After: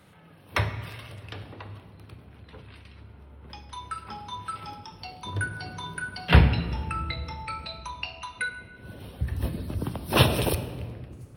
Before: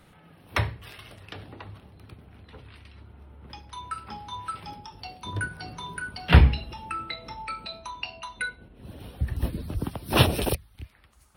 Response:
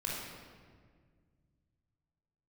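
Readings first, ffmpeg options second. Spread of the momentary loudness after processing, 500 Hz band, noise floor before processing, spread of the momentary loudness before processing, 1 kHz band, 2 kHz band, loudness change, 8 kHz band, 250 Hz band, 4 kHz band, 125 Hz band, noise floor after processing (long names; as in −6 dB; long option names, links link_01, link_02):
23 LU, +1.0 dB, −57 dBFS, 23 LU, 0.0 dB, +1.0 dB, −0.5 dB, 0.0 dB, +0.5 dB, 0.0 dB, −0.5 dB, −51 dBFS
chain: -filter_complex "[0:a]highpass=67,asplit=2[link_01][link_02];[1:a]atrim=start_sample=2205[link_03];[link_02][link_03]afir=irnorm=-1:irlink=0,volume=-10dB[link_04];[link_01][link_04]amix=inputs=2:normalize=0,volume=-1.5dB"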